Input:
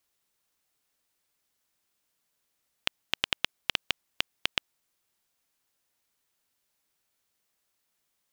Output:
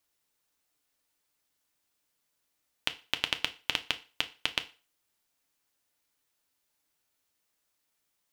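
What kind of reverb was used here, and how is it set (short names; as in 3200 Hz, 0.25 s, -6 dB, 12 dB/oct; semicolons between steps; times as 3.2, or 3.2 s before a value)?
FDN reverb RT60 0.35 s, low-frequency decay 0.85×, high-frequency decay 0.95×, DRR 7.5 dB; gain -1.5 dB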